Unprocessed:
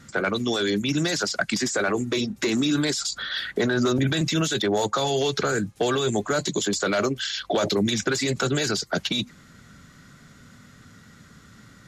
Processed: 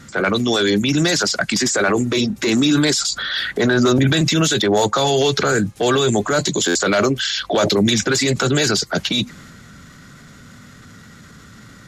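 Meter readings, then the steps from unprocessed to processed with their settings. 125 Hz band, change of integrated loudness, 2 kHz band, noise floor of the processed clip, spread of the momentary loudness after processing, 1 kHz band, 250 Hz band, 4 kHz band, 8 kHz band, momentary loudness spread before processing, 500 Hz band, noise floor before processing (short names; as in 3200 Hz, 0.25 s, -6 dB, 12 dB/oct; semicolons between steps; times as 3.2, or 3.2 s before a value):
+7.5 dB, +7.0 dB, +7.0 dB, -43 dBFS, 4 LU, +6.5 dB, +7.0 dB, +7.5 dB, +8.0 dB, 4 LU, +6.5 dB, -51 dBFS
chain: transient shaper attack -5 dB, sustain +3 dB; stuck buffer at 6.67, samples 512, times 6; gain +7.5 dB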